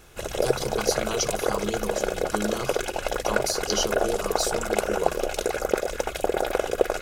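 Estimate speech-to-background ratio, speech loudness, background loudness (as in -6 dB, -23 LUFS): -3.5 dB, -30.5 LUFS, -27.0 LUFS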